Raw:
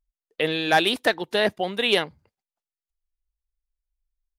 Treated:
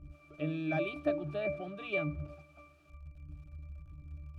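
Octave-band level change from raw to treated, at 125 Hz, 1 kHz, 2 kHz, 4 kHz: 0.0, -19.0, -15.5, -27.5 dB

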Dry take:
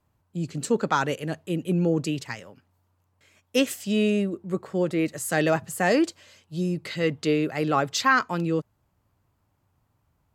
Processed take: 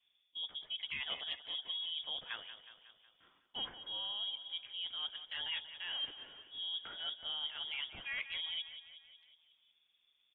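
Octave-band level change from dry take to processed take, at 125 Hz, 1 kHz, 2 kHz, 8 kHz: under -35 dB, -26.0 dB, -15.5 dB, under -40 dB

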